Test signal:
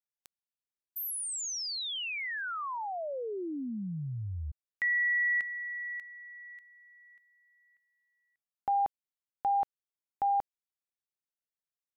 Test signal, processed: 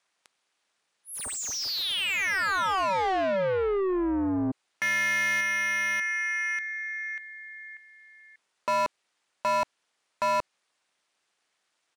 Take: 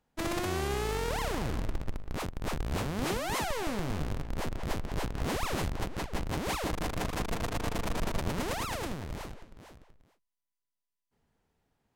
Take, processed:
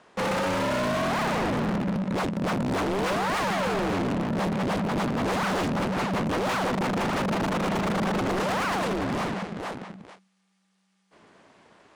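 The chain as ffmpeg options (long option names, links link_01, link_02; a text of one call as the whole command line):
ffmpeg -i in.wav -filter_complex "[0:a]aresample=22050,aresample=44100,aeval=exprs='val(0)*sin(2*PI*190*n/s)':channel_layout=same,asplit=2[link_01][link_02];[link_02]highpass=frequency=720:poles=1,volume=36dB,asoftclip=type=tanh:threshold=-19dB[link_03];[link_01][link_03]amix=inputs=2:normalize=0,lowpass=frequency=2800:poles=1,volume=-6dB" out.wav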